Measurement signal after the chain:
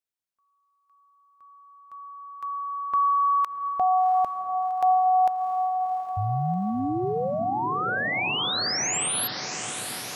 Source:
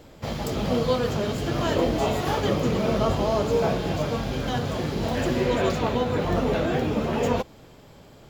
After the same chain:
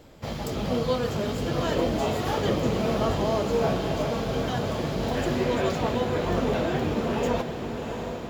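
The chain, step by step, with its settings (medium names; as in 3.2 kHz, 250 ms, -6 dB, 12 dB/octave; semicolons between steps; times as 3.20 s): echo that smears into a reverb 726 ms, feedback 69%, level -8 dB; trim -2.5 dB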